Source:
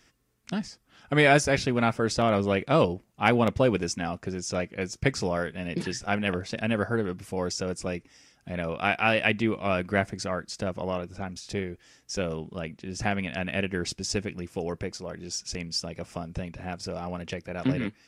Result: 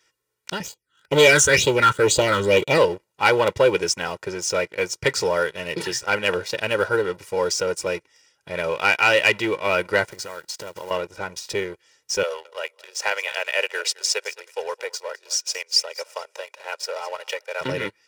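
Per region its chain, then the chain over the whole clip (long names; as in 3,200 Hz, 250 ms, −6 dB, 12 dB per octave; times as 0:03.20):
0:00.60–0:02.78: leveller curve on the samples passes 2 + all-pass phaser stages 8, 2.1 Hz, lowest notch 650–1,700 Hz
0:10.09–0:10.91: one scale factor per block 5 bits + downward compressor 10 to 1, threshold −35 dBFS
0:12.23–0:17.61: Butterworth high-pass 490 Hz + repeating echo 214 ms, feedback 26%, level −16 dB
whole clip: leveller curve on the samples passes 2; high-pass filter 510 Hz 6 dB per octave; comb filter 2.1 ms, depth 78%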